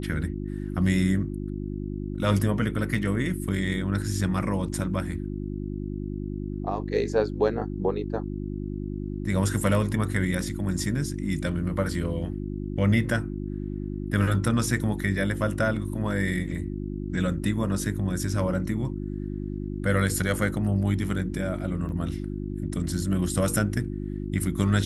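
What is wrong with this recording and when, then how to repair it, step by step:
hum 50 Hz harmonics 7 -32 dBFS
21.89 s: dropout 2.1 ms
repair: de-hum 50 Hz, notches 7; interpolate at 21.89 s, 2.1 ms

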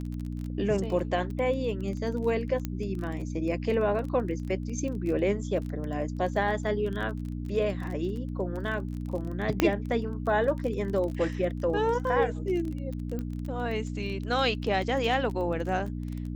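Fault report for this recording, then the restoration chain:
crackle 21 per s -34 dBFS
hum 60 Hz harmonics 5 -34 dBFS
2.65 s: pop -17 dBFS
9.60 s: pop -8 dBFS
13.19 s: pop -23 dBFS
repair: de-click; de-hum 60 Hz, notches 5

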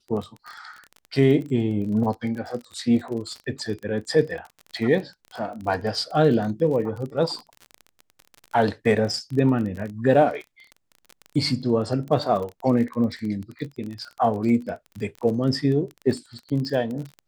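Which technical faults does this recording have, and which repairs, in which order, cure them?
crackle 26 per s -30 dBFS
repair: de-click

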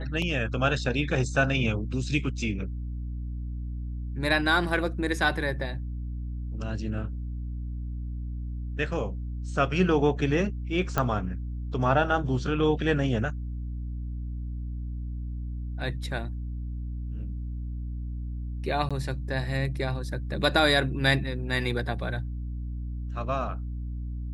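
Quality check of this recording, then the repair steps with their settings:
hum 60 Hz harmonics 5 -33 dBFS
10.98 s: pop -11 dBFS
18.89–18.91 s: dropout 16 ms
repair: de-click; de-hum 60 Hz, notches 5; interpolate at 18.89 s, 16 ms

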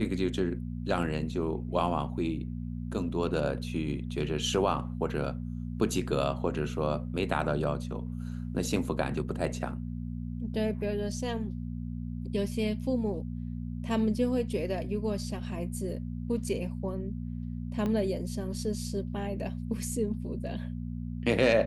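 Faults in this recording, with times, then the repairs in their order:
hum 60 Hz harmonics 4 -36 dBFS
17.86 s: pop -21 dBFS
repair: de-click; de-hum 60 Hz, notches 4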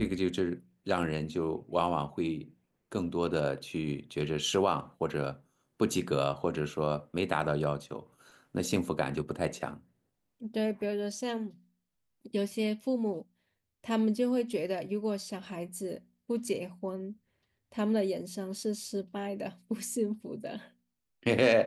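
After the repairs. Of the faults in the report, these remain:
17.86 s: pop

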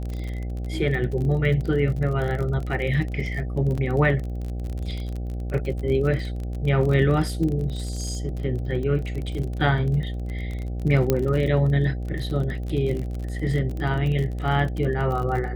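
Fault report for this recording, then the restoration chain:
buzz 60 Hz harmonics 13 -29 dBFS
crackle 34 per s -29 dBFS
3.77–3.78 s: dropout 7.1 ms
11.10 s: pop -7 dBFS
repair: de-click; de-hum 60 Hz, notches 13; interpolate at 3.77 s, 7.1 ms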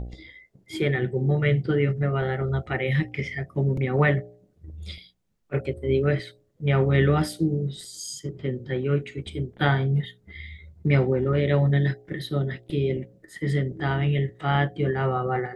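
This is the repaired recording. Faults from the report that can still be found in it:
nothing left

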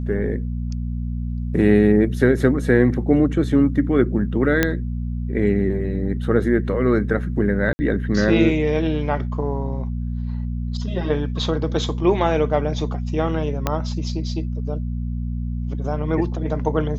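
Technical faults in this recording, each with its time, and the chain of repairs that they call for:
hum 60 Hz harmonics 4 -25 dBFS
4.63 s: pop -3 dBFS
7.73–7.79 s: dropout 60 ms
13.67 s: pop -6 dBFS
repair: de-click; de-hum 60 Hz, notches 4; interpolate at 7.73 s, 60 ms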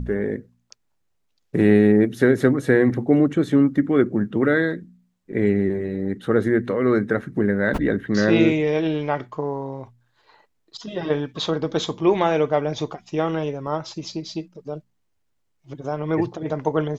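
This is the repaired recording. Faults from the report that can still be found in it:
13.67 s: pop

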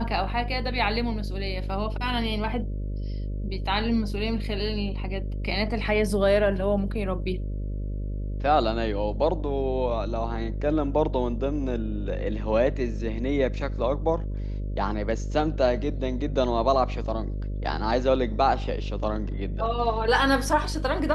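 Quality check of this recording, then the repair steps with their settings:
buzz 50 Hz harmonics 12 -30 dBFS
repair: de-hum 50 Hz, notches 12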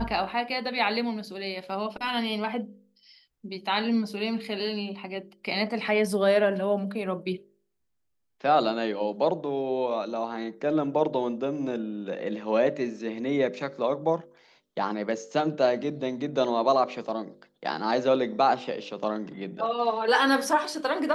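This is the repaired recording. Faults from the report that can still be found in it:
nothing left

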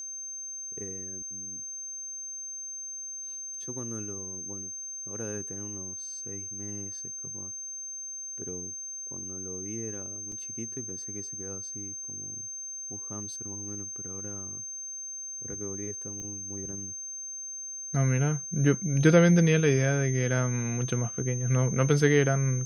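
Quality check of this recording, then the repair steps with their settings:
whine 6.3 kHz -36 dBFS
10.32 s: dropout 2.5 ms
16.20 s: pop -28 dBFS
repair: de-click; band-stop 6.3 kHz, Q 30; interpolate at 10.32 s, 2.5 ms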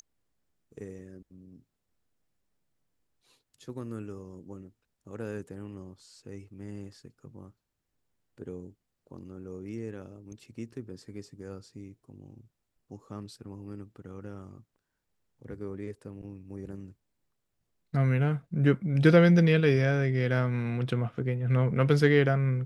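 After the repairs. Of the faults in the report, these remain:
nothing left

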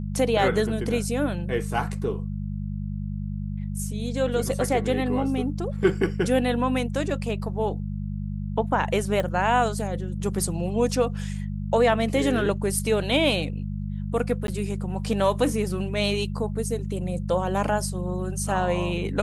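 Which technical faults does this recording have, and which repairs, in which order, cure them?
hum 50 Hz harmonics 4 -30 dBFS
9.20 s: pop -15 dBFS
14.47–14.48 s: dropout 12 ms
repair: de-click; de-hum 50 Hz, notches 4; interpolate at 14.47 s, 12 ms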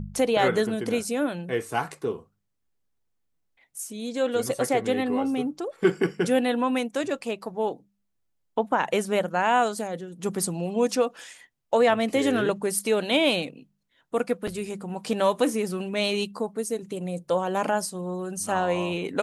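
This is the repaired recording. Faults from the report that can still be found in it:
nothing left

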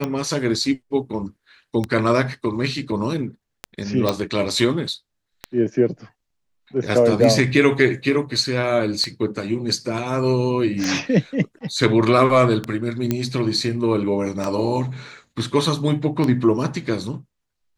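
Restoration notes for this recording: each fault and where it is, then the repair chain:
tick 33 1/3 rpm -10 dBFS
4.09 s: pop -6 dBFS
13.11 s: pop -7 dBFS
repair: de-click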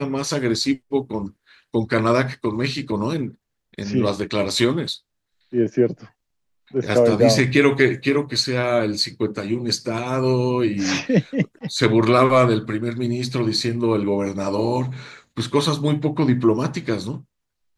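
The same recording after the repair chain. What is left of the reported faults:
nothing left

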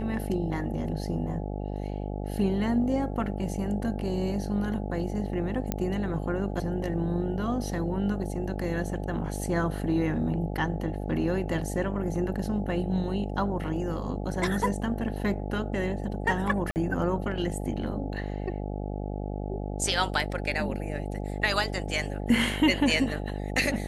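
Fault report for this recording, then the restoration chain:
buzz 50 Hz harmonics 17 -33 dBFS
5.72 s: pop -13 dBFS
16.71–16.76 s: dropout 49 ms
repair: de-click; de-hum 50 Hz, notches 17; interpolate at 16.71 s, 49 ms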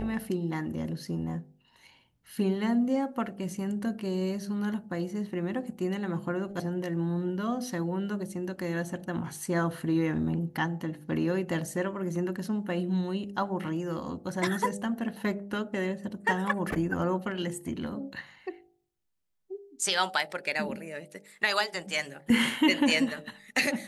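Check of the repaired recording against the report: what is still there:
nothing left

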